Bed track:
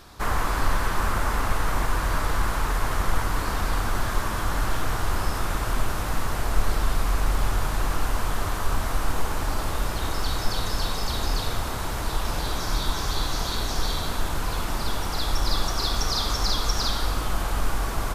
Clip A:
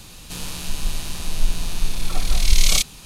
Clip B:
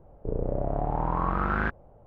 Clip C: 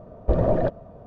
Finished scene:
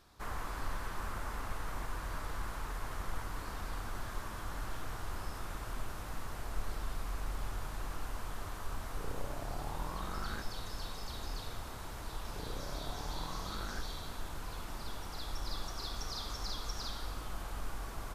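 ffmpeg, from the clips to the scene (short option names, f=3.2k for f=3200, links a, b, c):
-filter_complex "[2:a]asplit=2[a][b];[0:a]volume=-15.5dB[c];[b]acompressor=threshold=-31dB:ratio=6:attack=3.2:release=140:knee=1:detection=peak[d];[a]atrim=end=2.06,asetpts=PTS-STARTPTS,volume=-16dB,afade=t=in:d=0.004:c=hsin,afade=t=out:st=2.056:d=0.004:c=hsin,adelay=8720[e];[d]atrim=end=2.06,asetpts=PTS-STARTPTS,volume=-9dB,afade=t=in:d=0.004:c=hsin,afade=t=out:st=2.056:d=0.004:c=hsin,adelay=12110[f];[c][e][f]amix=inputs=3:normalize=0"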